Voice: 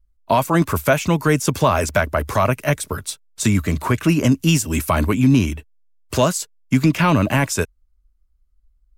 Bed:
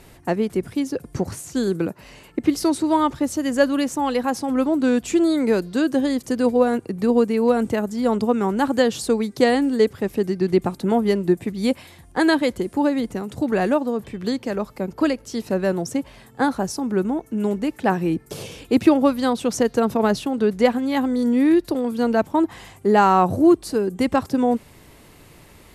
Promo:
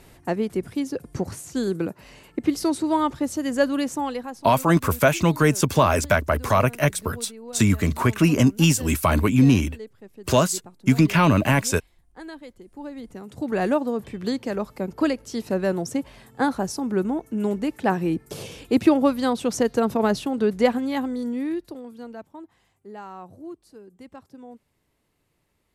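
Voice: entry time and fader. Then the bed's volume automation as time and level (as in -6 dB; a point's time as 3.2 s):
4.15 s, -1.5 dB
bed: 3.99 s -3 dB
4.59 s -21.5 dB
12.6 s -21.5 dB
13.65 s -2 dB
20.77 s -2 dB
22.52 s -24 dB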